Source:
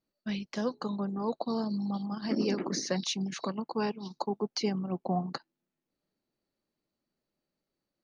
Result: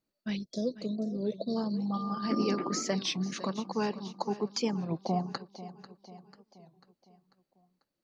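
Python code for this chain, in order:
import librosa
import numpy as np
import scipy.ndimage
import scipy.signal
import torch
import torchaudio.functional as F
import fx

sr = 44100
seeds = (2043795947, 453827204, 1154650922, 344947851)

p1 = fx.spec_box(x, sr, start_s=0.37, length_s=1.19, low_hz=690.0, high_hz=3300.0, gain_db=-26)
p2 = fx.dmg_tone(p1, sr, hz=1200.0, level_db=-37.0, at=(1.92, 2.82), fade=0.02)
p3 = p2 + fx.echo_feedback(p2, sr, ms=493, feedback_pct=51, wet_db=-15, dry=0)
y = fx.record_warp(p3, sr, rpm=33.33, depth_cents=160.0)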